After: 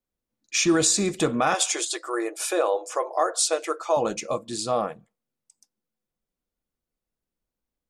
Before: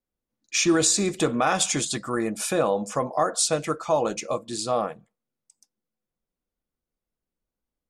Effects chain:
0:01.54–0:03.97: linear-phase brick-wall high-pass 310 Hz

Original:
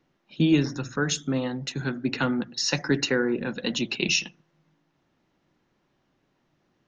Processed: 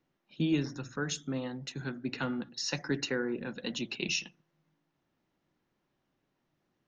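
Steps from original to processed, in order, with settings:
0:01.98–0:02.49: hum removal 283.1 Hz, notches 34
level −8.5 dB

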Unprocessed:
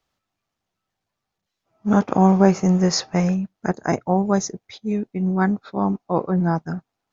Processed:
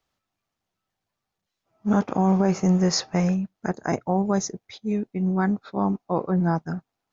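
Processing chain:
brickwall limiter −9 dBFS, peak gain reduction 6.5 dB
level −2 dB

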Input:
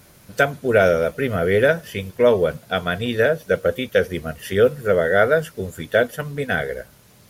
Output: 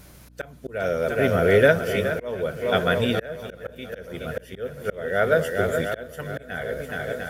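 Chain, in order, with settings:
feedback echo with a long and a short gap by turns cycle 701 ms, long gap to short 1.5 to 1, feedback 48%, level −10 dB
volume swells 588 ms
mains hum 60 Hz, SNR 27 dB

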